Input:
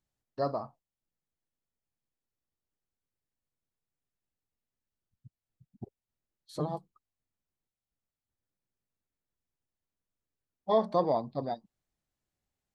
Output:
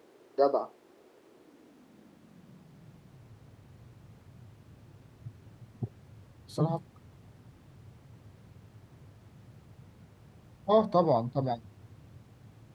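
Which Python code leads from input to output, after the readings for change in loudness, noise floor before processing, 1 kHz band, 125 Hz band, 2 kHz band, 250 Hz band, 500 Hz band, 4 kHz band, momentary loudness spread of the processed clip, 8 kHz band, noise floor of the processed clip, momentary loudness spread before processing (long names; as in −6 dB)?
+2.5 dB, below −85 dBFS, +2.5 dB, +7.5 dB, can't be measured, +4.5 dB, +3.5 dB, +2.0 dB, 17 LU, +3.5 dB, −60 dBFS, 22 LU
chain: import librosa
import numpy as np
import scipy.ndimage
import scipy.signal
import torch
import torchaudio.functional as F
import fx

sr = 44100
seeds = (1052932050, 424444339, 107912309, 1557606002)

y = fx.dmg_noise_colour(x, sr, seeds[0], colour='brown', level_db=-52.0)
y = fx.filter_sweep_highpass(y, sr, from_hz=380.0, to_hz=110.0, start_s=1.16, end_s=3.26, q=3.1)
y = y * 10.0 ** (2.0 / 20.0)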